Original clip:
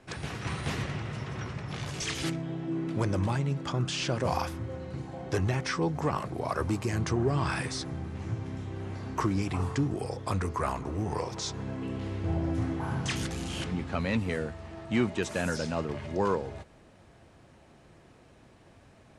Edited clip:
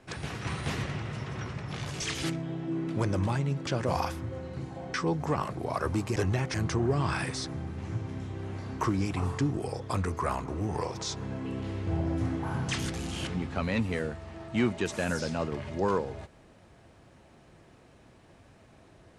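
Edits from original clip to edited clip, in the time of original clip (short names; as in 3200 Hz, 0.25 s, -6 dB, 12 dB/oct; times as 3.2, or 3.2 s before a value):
3.67–4.04 cut
5.31–5.69 move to 6.91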